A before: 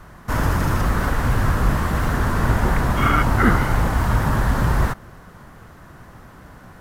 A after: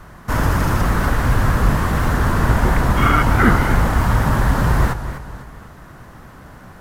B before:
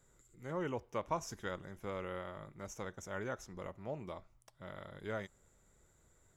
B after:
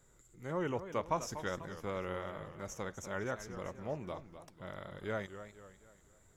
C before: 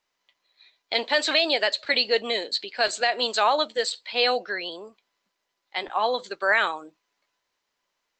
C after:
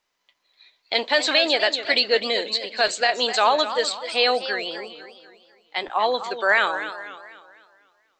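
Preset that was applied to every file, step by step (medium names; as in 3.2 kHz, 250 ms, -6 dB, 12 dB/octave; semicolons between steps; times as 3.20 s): modulated delay 248 ms, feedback 43%, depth 165 cents, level -11.5 dB; trim +2.5 dB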